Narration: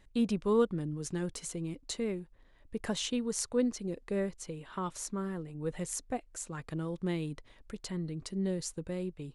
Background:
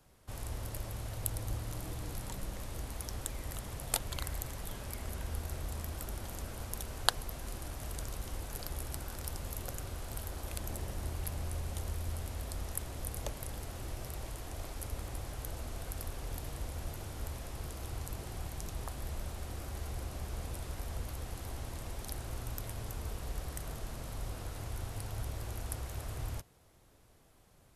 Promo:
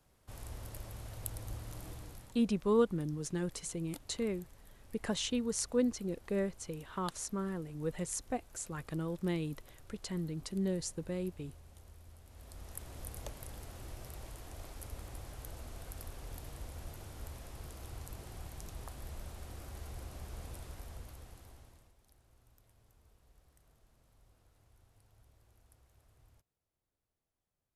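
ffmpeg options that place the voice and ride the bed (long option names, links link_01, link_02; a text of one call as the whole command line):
ffmpeg -i stem1.wav -i stem2.wav -filter_complex "[0:a]adelay=2200,volume=-1dB[link_01];[1:a]volume=7dB,afade=type=out:start_time=1.9:duration=0.48:silence=0.237137,afade=type=in:start_time=12.25:duration=0.73:silence=0.237137,afade=type=out:start_time=20.54:duration=1.4:silence=0.0891251[link_02];[link_01][link_02]amix=inputs=2:normalize=0" out.wav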